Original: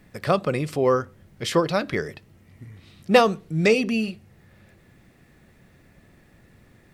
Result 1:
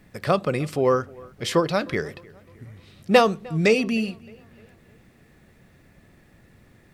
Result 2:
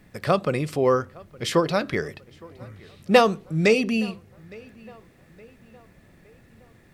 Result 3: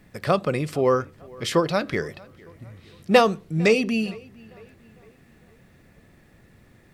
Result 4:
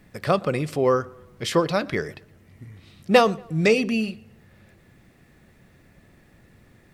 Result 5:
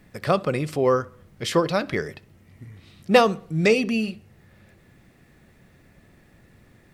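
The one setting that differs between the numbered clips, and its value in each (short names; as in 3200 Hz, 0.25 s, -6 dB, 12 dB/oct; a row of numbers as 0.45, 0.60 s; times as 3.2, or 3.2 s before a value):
tape echo, time: 307, 864, 455, 118, 67 ms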